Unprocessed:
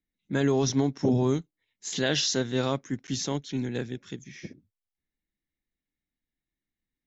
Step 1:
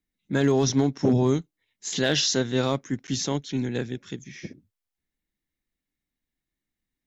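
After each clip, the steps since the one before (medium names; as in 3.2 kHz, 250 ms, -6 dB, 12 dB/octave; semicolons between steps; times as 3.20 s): hard clipper -16 dBFS, distortion -30 dB; trim +3 dB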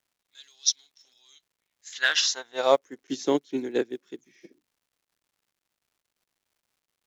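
high-pass sweep 3.8 kHz -> 350 Hz, 1.26–3.10 s; crackle 260 per s -45 dBFS; upward expansion 2.5:1, over -34 dBFS; trim +5 dB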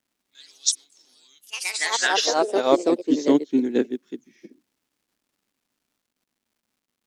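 peaking EQ 240 Hz +12 dB 0.8 oct; ever faster or slower copies 108 ms, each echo +3 st, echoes 3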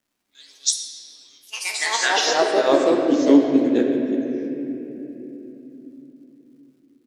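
doubling 14 ms -11 dB; on a send at -1 dB: reverberation RT60 3.4 s, pre-delay 12 ms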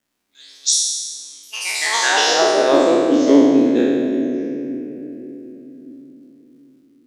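spectral sustain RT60 1.53 s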